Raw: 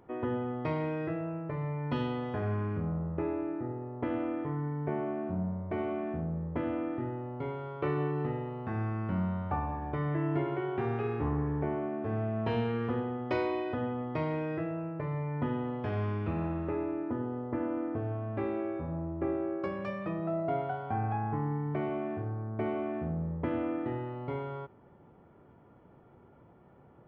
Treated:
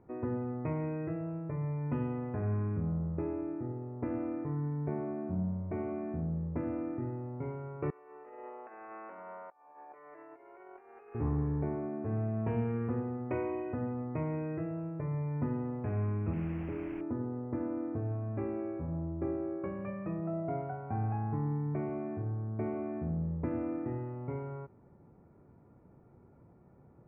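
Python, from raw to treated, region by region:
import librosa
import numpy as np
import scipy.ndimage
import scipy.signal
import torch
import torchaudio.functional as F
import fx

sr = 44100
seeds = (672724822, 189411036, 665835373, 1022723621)

y = fx.chain(x, sr, fx.highpass(hz=490.0, slope=24),
    fx.over_compress(threshold_db=-44.0, ratio=-0.5), at=(7.9, 11.15))
y = fx.chain(y, sr, fx.bandpass_q(hz=180.0, q=0.63),
    fx.quant_dither(seeds[0], bits=6, dither='triangular'), at=(16.33, 17.01))
y = scipy.signal.sosfilt(scipy.signal.ellip(4, 1.0, 40, 2500.0, 'lowpass', fs=sr, output='sos'), y)
y = fx.low_shelf(y, sr, hz=440.0, db=11.0)
y = y * librosa.db_to_amplitude(-8.5)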